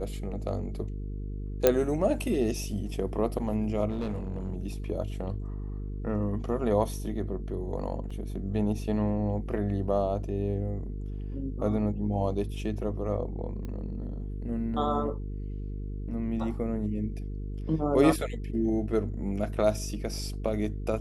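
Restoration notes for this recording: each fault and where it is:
mains buzz 50 Hz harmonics 9 −35 dBFS
0:01.67: click −6 dBFS
0:03.90–0:04.58: clipping −27.5 dBFS
0:08.10–0:08.11: drop-out 5.3 ms
0:13.65: click −26 dBFS

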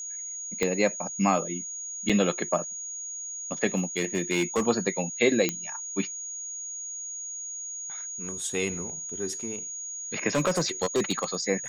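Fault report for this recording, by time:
whistle 6,700 Hz −34 dBFS
0:00.63: click −12 dBFS
0:02.09–0:02.10: drop-out 5.5 ms
0:03.75–0:04.62: clipping −20 dBFS
0:05.49: click −10 dBFS
0:10.35–0:11.35: clipping −20 dBFS

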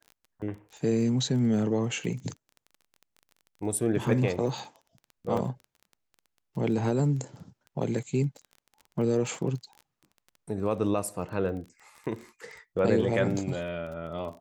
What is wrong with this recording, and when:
surface crackle 18 per second −38 dBFS
0:05.37: drop-out 3.6 ms

